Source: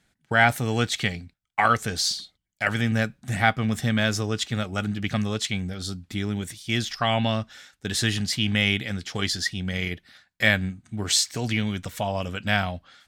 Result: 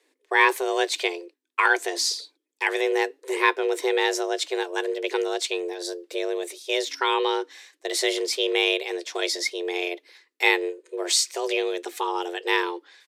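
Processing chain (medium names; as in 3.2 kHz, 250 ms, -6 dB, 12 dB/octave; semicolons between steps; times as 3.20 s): frequency shift +260 Hz; resampled via 32 kHz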